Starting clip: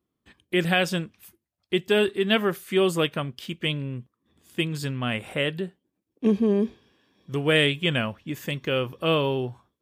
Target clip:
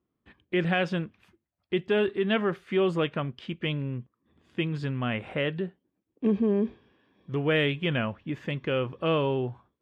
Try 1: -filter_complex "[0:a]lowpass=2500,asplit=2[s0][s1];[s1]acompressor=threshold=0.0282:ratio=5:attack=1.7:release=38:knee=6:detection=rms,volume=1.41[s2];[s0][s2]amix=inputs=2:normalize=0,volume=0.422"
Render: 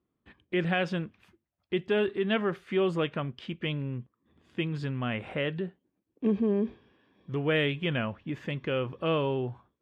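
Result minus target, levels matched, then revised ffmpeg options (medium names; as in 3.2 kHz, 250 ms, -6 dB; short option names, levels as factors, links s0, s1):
compression: peak gain reduction +6 dB
-filter_complex "[0:a]lowpass=2500,asplit=2[s0][s1];[s1]acompressor=threshold=0.0668:ratio=5:attack=1.7:release=38:knee=6:detection=rms,volume=1.41[s2];[s0][s2]amix=inputs=2:normalize=0,volume=0.422"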